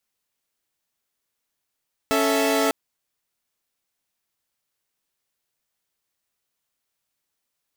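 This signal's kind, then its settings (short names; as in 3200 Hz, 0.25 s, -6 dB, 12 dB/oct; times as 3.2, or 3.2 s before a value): chord C#4/A4/E5 saw, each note -20.5 dBFS 0.60 s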